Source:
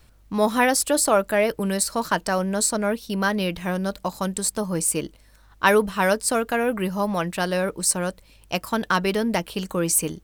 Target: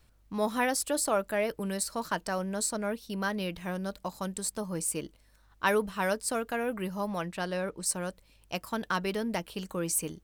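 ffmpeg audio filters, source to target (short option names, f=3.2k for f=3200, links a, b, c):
-filter_complex "[0:a]asettb=1/sr,asplit=3[a][b][c];[a]atrim=end=7.264[d];[b]atrim=start=7.26:end=7.86,asetpts=PTS-STARTPTS,afade=t=in:d=0.004:c=qsin,afade=t=out:st=0.596:d=0.004:c=qsin,highshelf=f=10k:g=-11.5[e];[c]atrim=start=7.856[f];[d][e]acrossfade=d=0.004:c1=hsin:c2=qsin[g];[g][f]acrossfade=d=0.004:c1=qsin:c2=hsin,volume=-9dB"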